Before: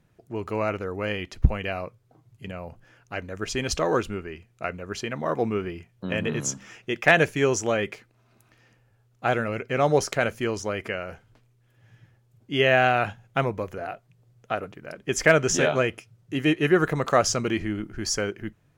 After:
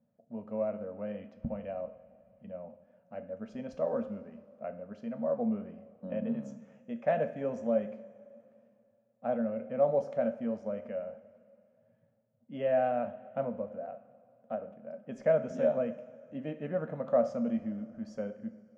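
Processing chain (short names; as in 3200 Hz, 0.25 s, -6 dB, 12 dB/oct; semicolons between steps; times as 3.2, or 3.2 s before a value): double band-pass 360 Hz, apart 1.3 oct; two-slope reverb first 0.47 s, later 2.6 s, from -15 dB, DRR 7.5 dB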